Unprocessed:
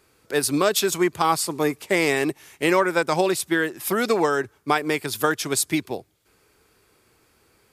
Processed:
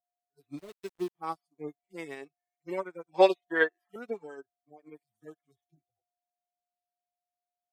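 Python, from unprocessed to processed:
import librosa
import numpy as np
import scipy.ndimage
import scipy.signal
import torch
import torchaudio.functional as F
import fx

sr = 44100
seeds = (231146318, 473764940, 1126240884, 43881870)

y = fx.hpss_only(x, sr, part='harmonic')
y = fx.noise_reduce_blind(y, sr, reduce_db=14)
y = y + 10.0 ** (-48.0 / 20.0) * np.sin(2.0 * np.pi * 710.0 * np.arange(len(y)) / sr)
y = fx.sample_gate(y, sr, floor_db=-27.0, at=(0.57, 1.14), fade=0.02)
y = fx.graphic_eq(y, sr, hz=(125, 250, 500, 1000, 2000, 4000), db=(-6, -6, 9, 7, 9, 7), at=(3.14, 3.96))
y = fx.upward_expand(y, sr, threshold_db=-38.0, expansion=2.5)
y = y * 10.0 ** (-3.0 / 20.0)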